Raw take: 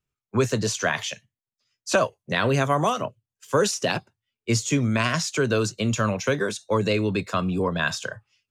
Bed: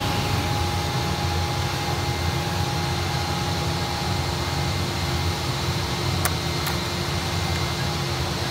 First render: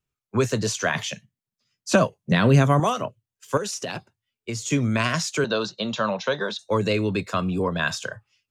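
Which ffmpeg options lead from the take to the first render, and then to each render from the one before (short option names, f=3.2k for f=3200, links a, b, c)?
-filter_complex "[0:a]asettb=1/sr,asplit=3[a][b][c];[a]atrim=end=0.954[d];[b]atrim=start=0.95:end=2.8,asetpts=PTS-STARTPTS,afade=t=in:d=0.004:c=qsin,afade=t=out:st=1.846:d=0.004:c=qsin,equalizer=f=180:t=o:w=1.2:g=12[e];[c]atrim=start=2.796[f];[d][e]acrossfade=d=0.004:c1=hsin:c2=qsin[g];[g][f]acrossfade=d=0.004:c1=qsin:c2=hsin,asettb=1/sr,asplit=3[h][i][j];[h]atrim=end=3.574[k];[i]atrim=start=3.57:end=4.72,asetpts=PTS-STARTPTS,afade=t=in:d=0.004:c=qsin,afade=t=out:st=1.146:d=0.004:c=qsin,acompressor=threshold=-25dB:ratio=12:attack=3.2:release=140:knee=1:detection=peak[l];[j]atrim=start=4.716[m];[k][l]acrossfade=d=0.004:c1=hsin:c2=qsin[n];[n][m]acrossfade=d=0.004:c1=qsin:c2=hsin,asettb=1/sr,asplit=3[o][p][q];[o]atrim=end=5.444[r];[p]atrim=start=5.44:end=6.59,asetpts=PTS-STARTPTS,afade=t=in:d=0.004:c=qsin,afade=t=out:st=1.146:d=0.004:c=qsin,highpass=f=170:w=0.5412,highpass=f=170:w=1.3066,equalizer=f=280:t=q:w=4:g=-10,equalizer=f=410:t=q:w=4:g=-4,equalizer=f=600:t=q:w=4:g=3,equalizer=f=890:t=q:w=4:g=7,equalizer=f=2.3k:t=q:w=4:g=-8,equalizer=f=3.8k:t=q:w=4:g=9,lowpass=f=5k:w=0.5412,lowpass=f=5k:w=1.3066[s];[q]atrim=start=6.586[t];[r][s]acrossfade=d=0.004:c1=hsin:c2=qsin[u];[u][t]acrossfade=d=0.004:c1=qsin:c2=hsin"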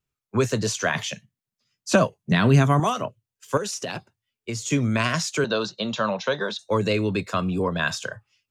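-filter_complex "[0:a]asettb=1/sr,asplit=3[a][b][c];[a]atrim=end=2.164[d];[b]atrim=start=2.16:end=2.96,asetpts=PTS-STARTPTS,afade=t=in:d=0.004:c=qsin,afade=t=out:st=0.796:d=0.004:c=qsin,equalizer=f=530:w=8:g=-11[e];[c]atrim=start=2.956[f];[d][e]acrossfade=d=0.004:c1=hsin:c2=qsin[g];[g][f]acrossfade=d=0.004:c1=qsin:c2=hsin"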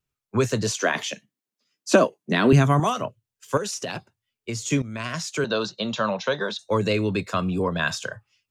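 -filter_complex "[0:a]asettb=1/sr,asplit=3[a][b][c];[a]atrim=end=0.714[d];[b]atrim=start=0.71:end=2.53,asetpts=PTS-STARTPTS,afade=t=in:d=0.004:c=qsin,afade=t=out:st=1.816:d=0.004:c=qsin,highpass=f=300:t=q:w=2.2[e];[c]atrim=start=2.526[f];[d][e]acrossfade=d=0.004:c1=hsin:c2=qsin[g];[g][f]acrossfade=d=0.004:c1=qsin:c2=hsin,asplit=2[h][i];[h]atrim=end=4.82,asetpts=PTS-STARTPTS,afade=t=out:st=4.816:d=0.004:c=hsin:silence=0.16788[j];[i]atrim=start=4.82,asetpts=PTS-STARTPTS,afade=t=in:d=0.76:silence=0.16788[k];[j][k]concat=n=2:v=0:a=1"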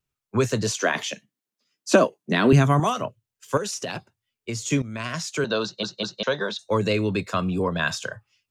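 -filter_complex "[0:a]asplit=4[a][b][c][d];[a]atrim=end=5.832[e];[b]atrim=start=5.628:end=5.832[f];[c]atrim=start=5.628:end=5.832[g];[d]atrim=start=6.228[h];[e][f]acrossfade=d=0.004:c1=hsin:c2=hsin[i];[i][g]acrossfade=d=0.004:c1=hsin:c2=hsin[j];[j][h]acrossfade=d=0.004:c1=hsin:c2=hsin"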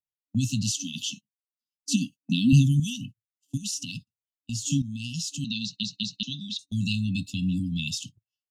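-af "afftfilt=real='re*(1-between(b*sr/4096,280,2600))':imag='im*(1-between(b*sr/4096,280,2600))':win_size=4096:overlap=0.75,agate=range=-24dB:threshold=-39dB:ratio=16:detection=peak"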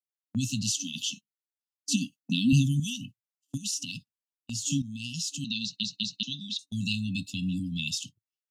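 -af "agate=range=-8dB:threshold=-45dB:ratio=16:detection=peak,lowshelf=f=180:g=-8"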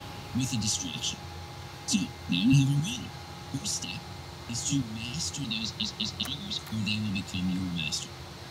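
-filter_complex "[1:a]volume=-17.5dB[a];[0:a][a]amix=inputs=2:normalize=0"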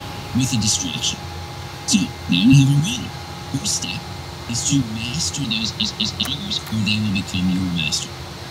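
-af "volume=10.5dB,alimiter=limit=-3dB:level=0:latency=1"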